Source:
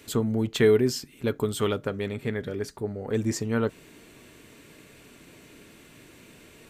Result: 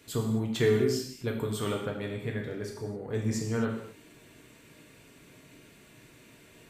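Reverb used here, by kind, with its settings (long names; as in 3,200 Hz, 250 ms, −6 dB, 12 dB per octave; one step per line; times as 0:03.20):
reverb whose tail is shaped and stops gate 290 ms falling, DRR −0.5 dB
level −7 dB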